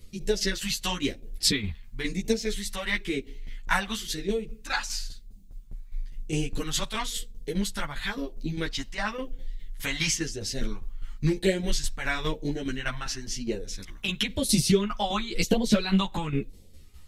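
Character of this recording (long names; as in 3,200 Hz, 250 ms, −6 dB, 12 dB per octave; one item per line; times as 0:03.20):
phaser sweep stages 2, 0.98 Hz, lowest notch 390–1,200 Hz
tremolo saw down 4.9 Hz, depth 65%
a shimmering, thickened sound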